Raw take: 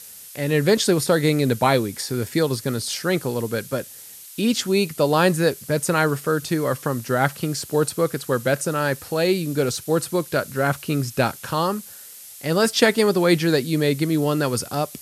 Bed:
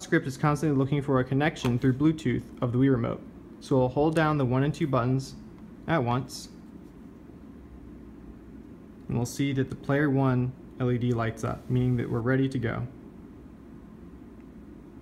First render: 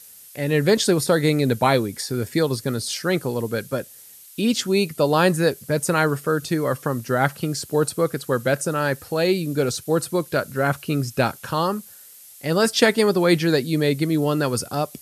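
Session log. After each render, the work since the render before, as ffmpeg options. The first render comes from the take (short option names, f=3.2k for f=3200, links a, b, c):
-af "afftdn=nr=6:nf=-41"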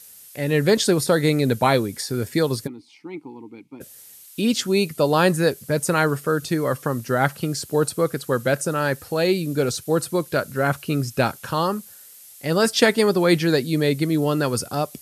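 -filter_complex "[0:a]asplit=3[a][b][c];[a]afade=t=out:st=2.66:d=0.02[d];[b]asplit=3[e][f][g];[e]bandpass=f=300:t=q:w=8,volume=0dB[h];[f]bandpass=f=870:t=q:w=8,volume=-6dB[i];[g]bandpass=f=2.24k:t=q:w=8,volume=-9dB[j];[h][i][j]amix=inputs=3:normalize=0,afade=t=in:st=2.66:d=0.02,afade=t=out:st=3.8:d=0.02[k];[c]afade=t=in:st=3.8:d=0.02[l];[d][k][l]amix=inputs=3:normalize=0"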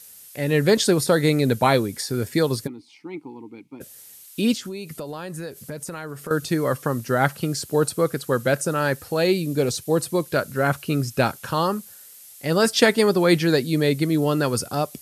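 -filter_complex "[0:a]asettb=1/sr,asplit=3[a][b][c];[a]atrim=end=4.544[d];[b]atrim=start=4.54:end=6.31,asetpts=PTS-STARTPTS,afade=t=in:d=0.004:c=qsin,afade=t=out:st=1.766:d=0.004:c=qsin,acompressor=threshold=-29dB:ratio=10:attack=3.2:release=140:knee=1:detection=peak[e];[c]atrim=start=6.306[f];[d][e]acrossfade=d=0.004:c1=hsin:c2=qsin[g];[g][f]acrossfade=d=0.004:c1=qsin:c2=hsin,asettb=1/sr,asplit=3[h][i][j];[h]atrim=end=9.414[k];[i]atrim=start=9.41:end=10.25,asetpts=PTS-STARTPTS,afade=t=in:d=0.004:c=qsin,afade=t=out:st=0.836:d=0.004:c=qsin,equalizer=f=1.4k:t=o:w=0.22:g=-9.5[l];[j]atrim=start=10.246[m];[k][l]acrossfade=d=0.004:c1=hsin:c2=qsin[n];[n][m]acrossfade=d=0.004:c1=qsin:c2=hsin"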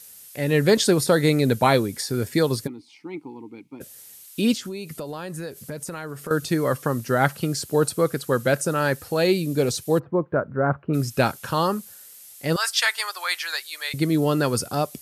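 -filter_complex "[0:a]asplit=3[a][b][c];[a]afade=t=out:st=9.98:d=0.02[d];[b]lowpass=f=1.4k:w=0.5412,lowpass=f=1.4k:w=1.3066,afade=t=in:st=9.98:d=0.02,afade=t=out:st=10.93:d=0.02[e];[c]afade=t=in:st=10.93:d=0.02[f];[d][e][f]amix=inputs=3:normalize=0,asettb=1/sr,asplit=3[g][h][i];[g]atrim=end=12.564[j];[h]atrim=start=12.56:end=13.94,asetpts=PTS-STARTPTS,afade=t=in:d=0.004:c=qsin,afade=t=out:st=1.376:d=0.004:c=qsin,highpass=f=1k:w=0.5412,highpass=f=1k:w=1.3066[k];[i]atrim=start=13.936[l];[j][k]acrossfade=d=0.004:c1=hsin:c2=qsin[m];[m][l]acrossfade=d=0.004:c1=qsin:c2=hsin"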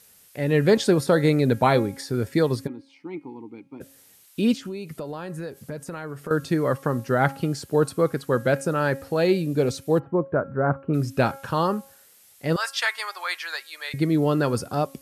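-af "highshelf=f=3.6k:g=-10.5,bandreject=f=272.8:t=h:w=4,bandreject=f=545.6:t=h:w=4,bandreject=f=818.4:t=h:w=4,bandreject=f=1.0912k:t=h:w=4,bandreject=f=1.364k:t=h:w=4,bandreject=f=1.6368k:t=h:w=4,bandreject=f=1.9096k:t=h:w=4,bandreject=f=2.1824k:t=h:w=4,bandreject=f=2.4552k:t=h:w=4,bandreject=f=2.728k:t=h:w=4,bandreject=f=3.0008k:t=h:w=4"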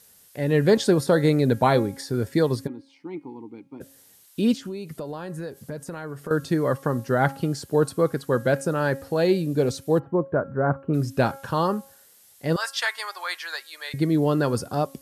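-af "equalizer=f=2.4k:t=o:w=0.49:g=-4.5,bandreject=f=1.3k:w=19"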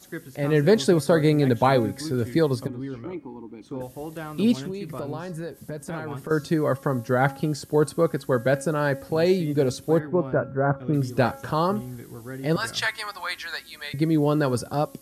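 -filter_complex "[1:a]volume=-11.5dB[a];[0:a][a]amix=inputs=2:normalize=0"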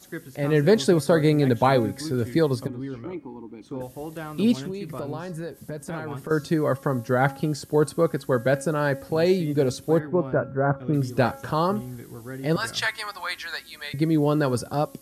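-af anull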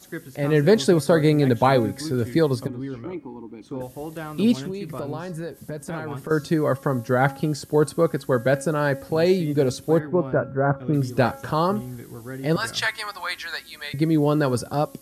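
-af "volume=1.5dB"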